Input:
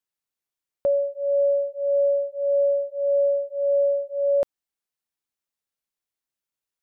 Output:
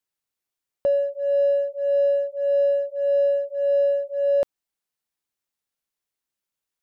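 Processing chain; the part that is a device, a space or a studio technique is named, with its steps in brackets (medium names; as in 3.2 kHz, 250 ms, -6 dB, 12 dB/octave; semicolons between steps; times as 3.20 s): parallel distortion (in parallel at -12 dB: hard clipper -29 dBFS, distortion -7 dB)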